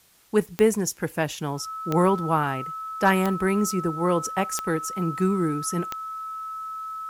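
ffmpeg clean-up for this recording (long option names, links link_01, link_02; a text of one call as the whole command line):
ffmpeg -i in.wav -af "adeclick=threshold=4,bandreject=frequency=1300:width=30,agate=range=-21dB:threshold=-29dB" out.wav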